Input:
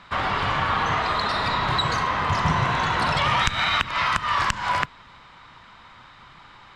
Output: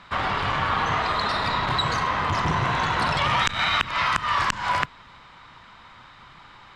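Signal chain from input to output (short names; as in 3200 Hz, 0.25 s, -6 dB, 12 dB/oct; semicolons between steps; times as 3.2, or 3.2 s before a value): core saturation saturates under 540 Hz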